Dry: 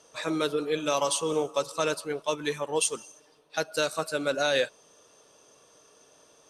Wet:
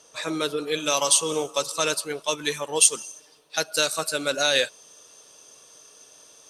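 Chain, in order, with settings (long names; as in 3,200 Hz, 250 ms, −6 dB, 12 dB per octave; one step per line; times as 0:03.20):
high-shelf EQ 2,400 Hz +6.5 dB, from 0:00.67 +12 dB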